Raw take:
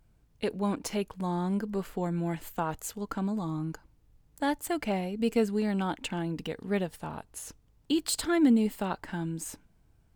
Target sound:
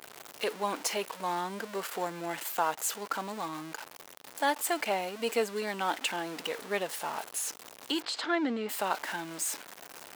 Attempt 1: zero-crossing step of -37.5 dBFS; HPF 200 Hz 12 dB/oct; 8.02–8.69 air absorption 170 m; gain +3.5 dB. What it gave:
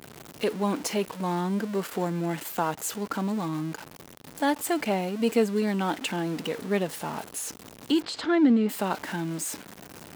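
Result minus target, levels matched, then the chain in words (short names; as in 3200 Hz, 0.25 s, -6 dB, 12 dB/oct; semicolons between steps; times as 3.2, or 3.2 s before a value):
250 Hz band +7.5 dB
zero-crossing step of -37.5 dBFS; HPF 580 Hz 12 dB/oct; 8.02–8.69 air absorption 170 m; gain +3.5 dB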